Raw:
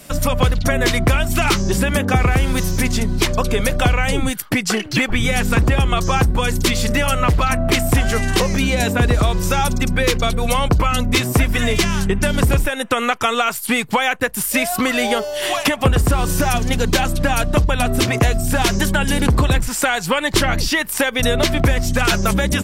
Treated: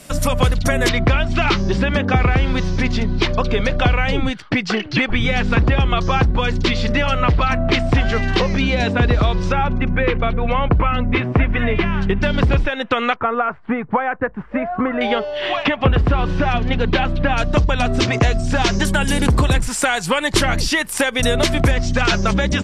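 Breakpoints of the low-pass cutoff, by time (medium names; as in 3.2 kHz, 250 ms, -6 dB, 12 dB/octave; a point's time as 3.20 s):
low-pass 24 dB/octave
12 kHz
from 0.89 s 4.6 kHz
from 9.52 s 2.6 kHz
from 12.02 s 4.3 kHz
from 13.16 s 1.6 kHz
from 15.01 s 3.5 kHz
from 17.38 s 6.2 kHz
from 18.85 s 11 kHz
from 21.71 s 6 kHz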